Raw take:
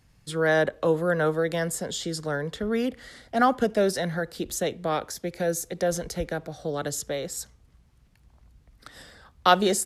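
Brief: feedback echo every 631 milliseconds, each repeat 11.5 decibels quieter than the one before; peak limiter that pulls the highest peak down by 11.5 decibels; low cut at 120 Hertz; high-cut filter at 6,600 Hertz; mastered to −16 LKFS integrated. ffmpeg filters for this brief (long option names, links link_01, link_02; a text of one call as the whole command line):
ffmpeg -i in.wav -af "highpass=120,lowpass=6600,alimiter=limit=-16.5dB:level=0:latency=1,aecho=1:1:631|1262|1893:0.266|0.0718|0.0194,volume=13dB" out.wav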